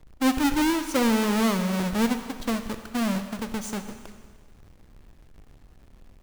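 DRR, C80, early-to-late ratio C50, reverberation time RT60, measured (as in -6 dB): 8.0 dB, 10.0 dB, 9.0 dB, 1.5 s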